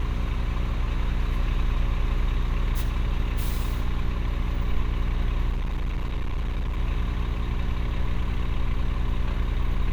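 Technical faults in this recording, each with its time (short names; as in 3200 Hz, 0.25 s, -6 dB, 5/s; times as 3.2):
hum 60 Hz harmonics 7 -29 dBFS
5.52–6.78 clipped -23 dBFS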